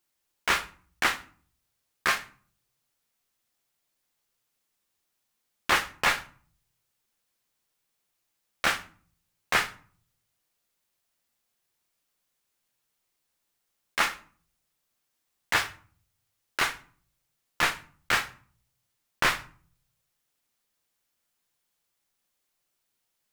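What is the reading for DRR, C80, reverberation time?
9.0 dB, 21.0 dB, 0.45 s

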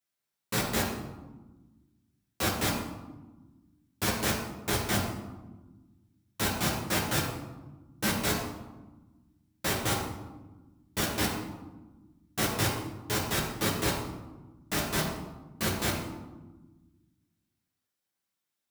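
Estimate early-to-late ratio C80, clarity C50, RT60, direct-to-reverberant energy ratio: 6.0 dB, 4.0 dB, 1.2 s, -4.5 dB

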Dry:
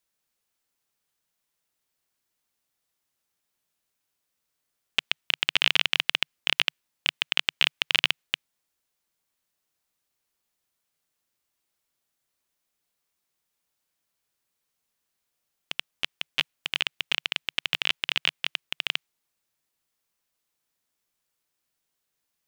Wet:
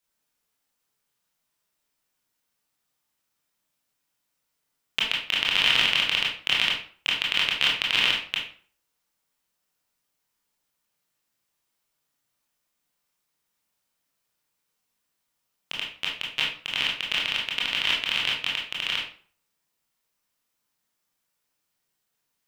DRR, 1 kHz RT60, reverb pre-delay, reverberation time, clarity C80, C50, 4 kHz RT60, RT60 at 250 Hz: -4.0 dB, 0.45 s, 20 ms, 0.45 s, 9.5 dB, 4.0 dB, 0.35 s, 0.45 s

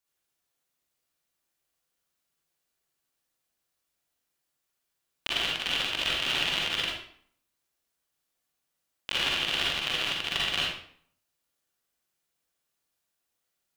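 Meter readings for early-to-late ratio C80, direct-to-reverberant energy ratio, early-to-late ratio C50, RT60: 4.0 dB, -5.0 dB, -1.5 dB, 0.55 s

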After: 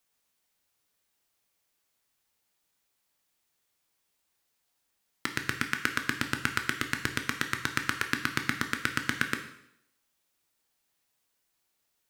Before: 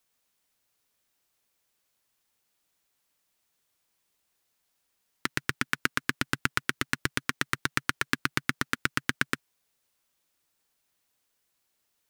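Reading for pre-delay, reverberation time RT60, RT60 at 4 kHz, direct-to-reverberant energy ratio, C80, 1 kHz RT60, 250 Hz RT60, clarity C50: 7 ms, 0.75 s, 0.70 s, 5.0 dB, 12.0 dB, 0.70 s, 0.80 s, 9.5 dB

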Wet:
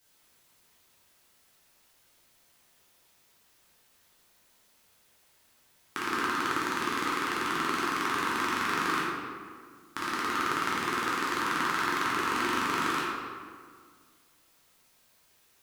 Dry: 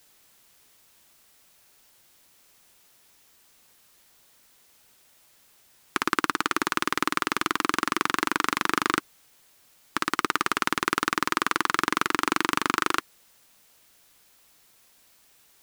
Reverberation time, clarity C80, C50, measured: 1.9 s, 0.5 dB, -2.0 dB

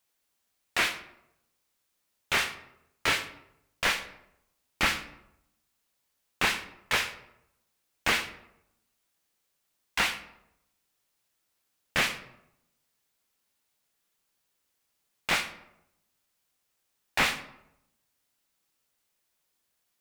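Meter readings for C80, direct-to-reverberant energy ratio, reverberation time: 14.0 dB, 8.5 dB, 0.80 s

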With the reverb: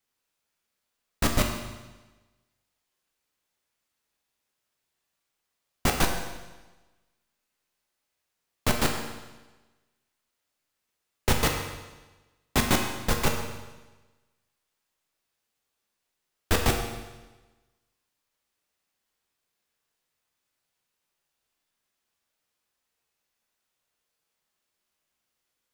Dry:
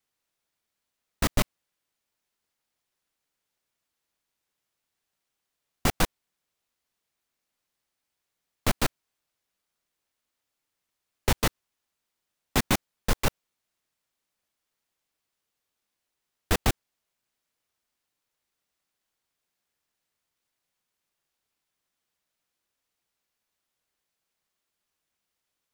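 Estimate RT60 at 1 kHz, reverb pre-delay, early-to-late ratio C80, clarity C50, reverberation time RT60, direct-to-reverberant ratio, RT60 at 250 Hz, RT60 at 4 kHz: 1.2 s, 9 ms, 6.5 dB, 4.5 dB, 1.2 s, 1.5 dB, 1.2 s, 1.2 s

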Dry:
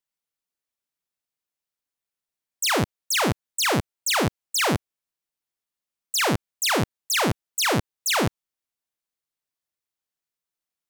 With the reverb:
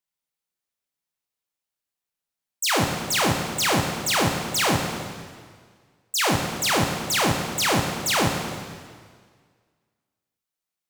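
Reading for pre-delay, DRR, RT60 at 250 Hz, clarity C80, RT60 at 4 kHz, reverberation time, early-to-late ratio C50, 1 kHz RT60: 6 ms, 1.5 dB, 1.8 s, 5.0 dB, 1.7 s, 1.8 s, 3.5 dB, 1.8 s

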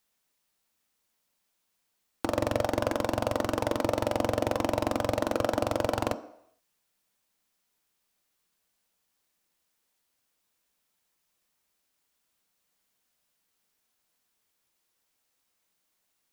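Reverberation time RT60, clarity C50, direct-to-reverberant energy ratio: 0.70 s, 15.0 dB, 10.0 dB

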